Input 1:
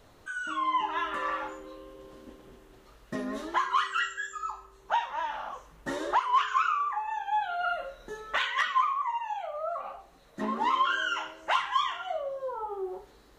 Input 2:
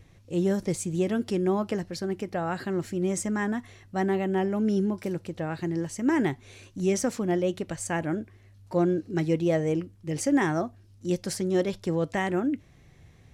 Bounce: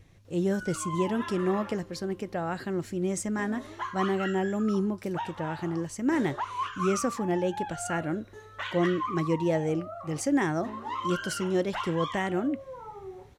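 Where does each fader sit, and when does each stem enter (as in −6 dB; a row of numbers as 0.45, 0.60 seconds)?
−7.5, −2.0 decibels; 0.25, 0.00 seconds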